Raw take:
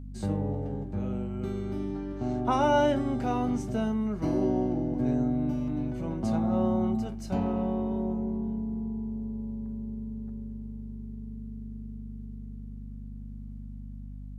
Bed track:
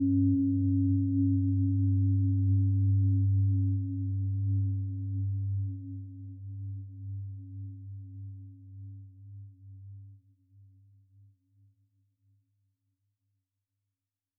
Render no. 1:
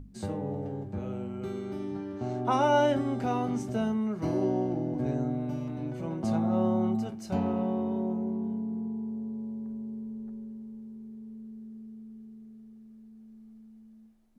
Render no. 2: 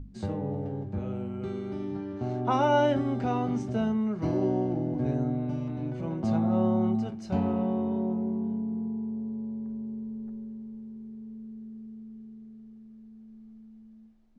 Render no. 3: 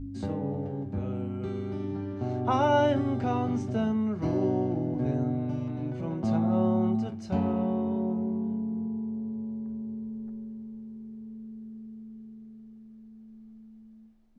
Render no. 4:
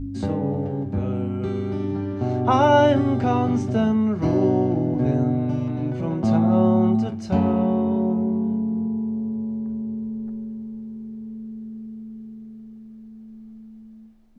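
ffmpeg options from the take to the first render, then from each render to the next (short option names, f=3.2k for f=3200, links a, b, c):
-af "bandreject=f=50:t=h:w=6,bandreject=f=100:t=h:w=6,bandreject=f=150:t=h:w=6,bandreject=f=200:t=h:w=6,bandreject=f=250:t=h:w=6,bandreject=f=300:t=h:w=6"
-af "lowpass=5.3k,lowshelf=f=160:g=5"
-filter_complex "[1:a]volume=-14dB[a];[0:a][a]amix=inputs=2:normalize=0"
-af "volume=7.5dB"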